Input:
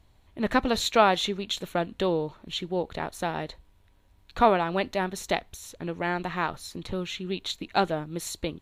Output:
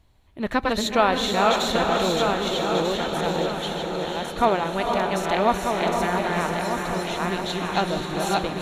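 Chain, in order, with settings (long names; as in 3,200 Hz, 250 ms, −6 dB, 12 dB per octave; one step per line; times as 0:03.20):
feedback delay that plays each chunk backwards 621 ms, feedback 58%, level −1.5 dB
feedback delay with all-pass diffusion 485 ms, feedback 47%, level −3.5 dB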